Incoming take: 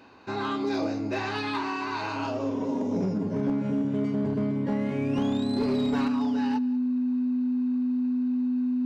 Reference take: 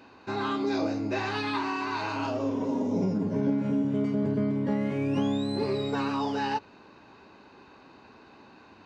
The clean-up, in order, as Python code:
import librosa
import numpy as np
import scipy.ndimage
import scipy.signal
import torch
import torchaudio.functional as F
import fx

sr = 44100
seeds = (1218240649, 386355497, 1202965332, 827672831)

y = fx.fix_declip(x, sr, threshold_db=-20.5)
y = fx.notch(y, sr, hz=250.0, q=30.0)
y = fx.fix_echo_inverse(y, sr, delay_ms=188, level_db=-21.5)
y = fx.gain(y, sr, db=fx.steps((0.0, 0.0), (6.08, 5.5)))